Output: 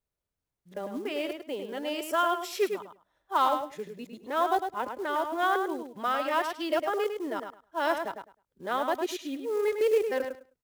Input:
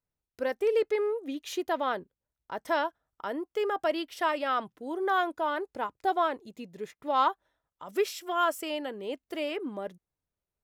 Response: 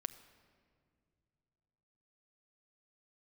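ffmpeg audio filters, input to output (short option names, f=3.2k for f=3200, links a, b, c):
-filter_complex "[0:a]areverse,asplit=2[a][b];[b]adelay=104,lowpass=f=4.9k:p=1,volume=-6.5dB,asplit=2[c][d];[d]adelay=104,lowpass=f=4.9k:p=1,volume=0.17,asplit=2[e][f];[f]adelay=104,lowpass=f=4.9k:p=1,volume=0.17[g];[a][c][e][g]amix=inputs=4:normalize=0,acrusher=bits=6:mode=log:mix=0:aa=0.000001"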